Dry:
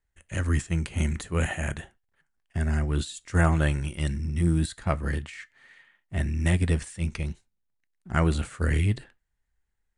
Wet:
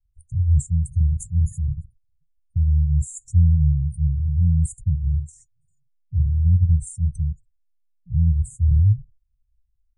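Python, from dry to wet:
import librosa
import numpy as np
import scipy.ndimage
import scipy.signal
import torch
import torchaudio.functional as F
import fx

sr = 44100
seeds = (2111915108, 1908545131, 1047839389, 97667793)

y = scipy.signal.sosfilt(scipy.signal.ellip(3, 1.0, 40, [140.0, 7200.0], 'bandstop', fs=sr, output='sos'), x)
y = fx.spec_gate(y, sr, threshold_db=-20, keep='strong')
y = y + 0.83 * np.pad(y, (int(1.6 * sr / 1000.0), 0))[:len(y)]
y = y * librosa.db_to_amplitude(5.0)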